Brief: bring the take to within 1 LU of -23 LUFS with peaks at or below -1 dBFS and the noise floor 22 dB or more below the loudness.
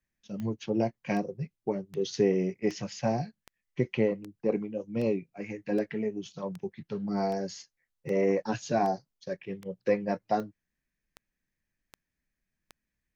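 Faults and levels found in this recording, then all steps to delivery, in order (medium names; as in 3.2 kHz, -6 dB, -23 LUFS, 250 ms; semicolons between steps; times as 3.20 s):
clicks found 17; loudness -31.5 LUFS; peak level -13.0 dBFS; loudness target -23.0 LUFS
-> de-click; trim +8.5 dB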